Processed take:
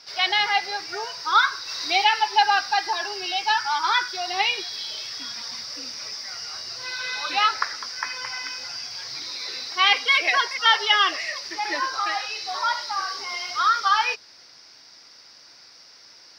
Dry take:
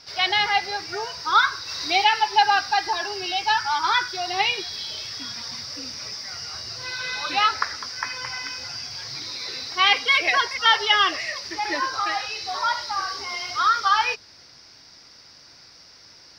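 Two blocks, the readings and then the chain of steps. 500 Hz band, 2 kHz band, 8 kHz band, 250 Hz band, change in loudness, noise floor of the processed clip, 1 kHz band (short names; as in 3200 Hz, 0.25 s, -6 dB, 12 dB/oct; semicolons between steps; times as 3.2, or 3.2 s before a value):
-2.5 dB, 0.0 dB, 0.0 dB, -4.0 dB, -0.5 dB, -50 dBFS, -0.5 dB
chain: HPF 410 Hz 6 dB/oct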